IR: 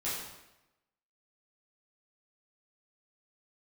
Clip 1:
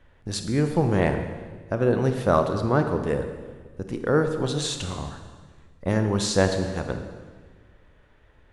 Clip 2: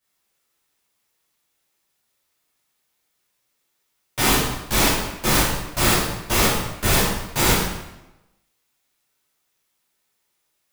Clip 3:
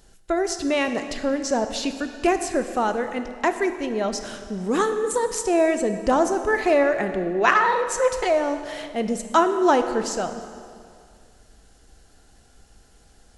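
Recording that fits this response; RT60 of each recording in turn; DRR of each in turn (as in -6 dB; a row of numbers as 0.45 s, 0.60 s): 2; 1.5 s, 0.95 s, 2.3 s; 6.0 dB, -10.5 dB, 8.0 dB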